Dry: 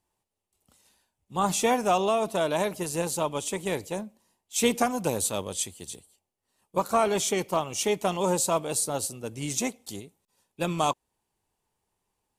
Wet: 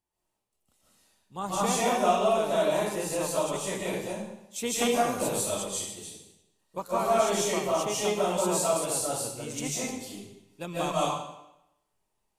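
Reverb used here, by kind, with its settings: algorithmic reverb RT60 0.85 s, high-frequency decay 0.95×, pre-delay 110 ms, DRR -8 dB; trim -9 dB

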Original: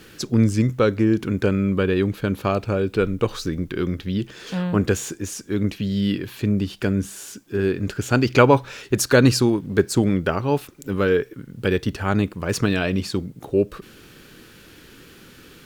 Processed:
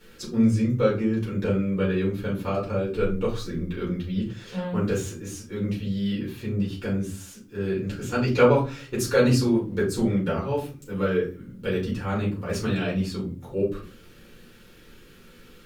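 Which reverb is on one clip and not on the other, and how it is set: simulated room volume 160 m³, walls furnished, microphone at 4.4 m; trim -15 dB

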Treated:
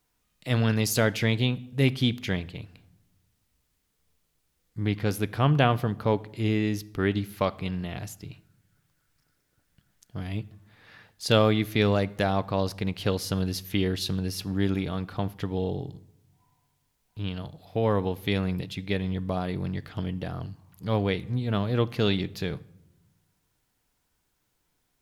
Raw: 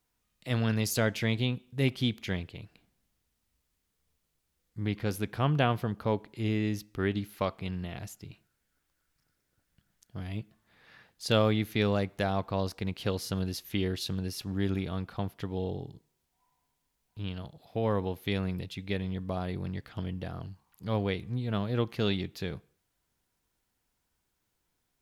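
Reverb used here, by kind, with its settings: simulated room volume 3400 m³, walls furnished, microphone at 0.39 m; trim +4.5 dB

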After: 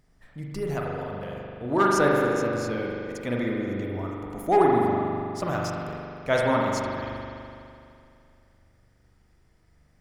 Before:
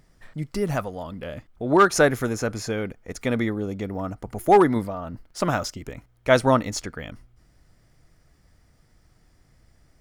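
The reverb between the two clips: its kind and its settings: spring tank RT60 2.6 s, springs 41 ms, chirp 35 ms, DRR -2.5 dB; trim -7 dB

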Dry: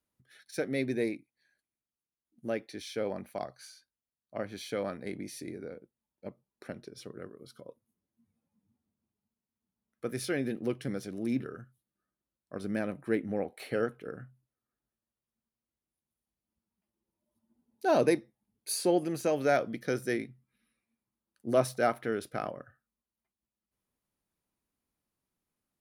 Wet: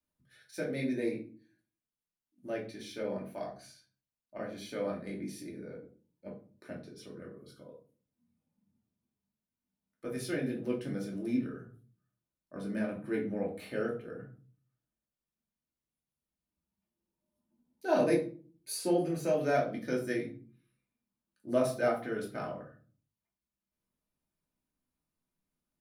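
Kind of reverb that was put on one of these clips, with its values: simulated room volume 280 m³, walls furnished, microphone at 2.6 m; trim -8 dB

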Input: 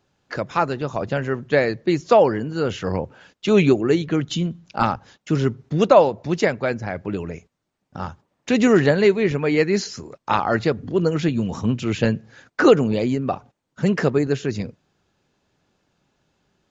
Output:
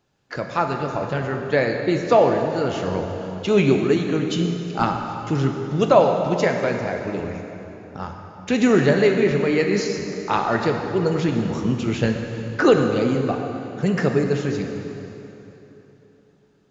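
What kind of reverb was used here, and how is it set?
plate-style reverb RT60 3.4 s, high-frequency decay 0.8×, DRR 3 dB; trim -2 dB

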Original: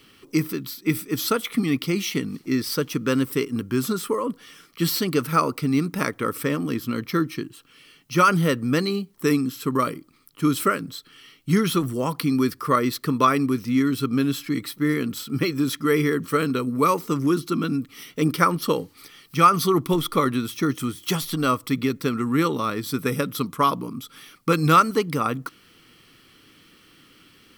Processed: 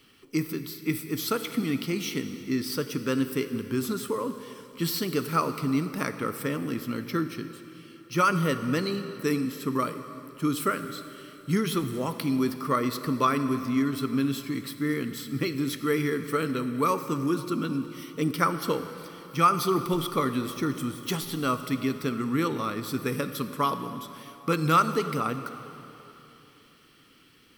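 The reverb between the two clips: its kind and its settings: plate-style reverb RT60 3.2 s, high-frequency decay 0.85×, DRR 9 dB; trim -5.5 dB

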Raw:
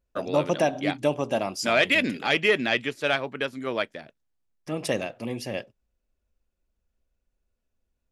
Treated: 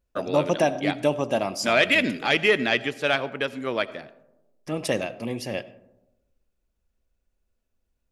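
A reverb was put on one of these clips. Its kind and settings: algorithmic reverb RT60 1 s, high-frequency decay 0.3×, pre-delay 40 ms, DRR 17.5 dB; trim +1.5 dB

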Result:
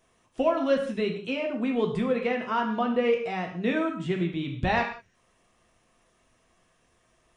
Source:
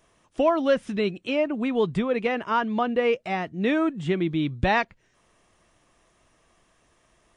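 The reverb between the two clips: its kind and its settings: gated-style reverb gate 210 ms falling, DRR 1.5 dB; trim -5 dB

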